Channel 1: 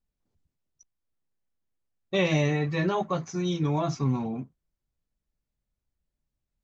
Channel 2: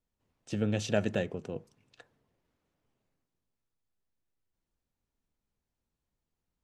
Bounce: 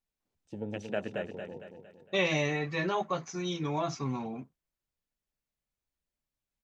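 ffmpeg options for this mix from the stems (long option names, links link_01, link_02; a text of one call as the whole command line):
ffmpeg -i stem1.wav -i stem2.wav -filter_complex "[0:a]equalizer=frequency=2400:width_type=o:width=0.77:gain=2,volume=-1.5dB[link_01];[1:a]afwtdn=0.01,volume=-2.5dB,asplit=2[link_02][link_03];[link_03]volume=-6.5dB,aecho=0:1:229|458|687|916|1145|1374:1|0.45|0.202|0.0911|0.041|0.0185[link_04];[link_01][link_02][link_04]amix=inputs=3:normalize=0,lowshelf=frequency=250:gain=-10.5" out.wav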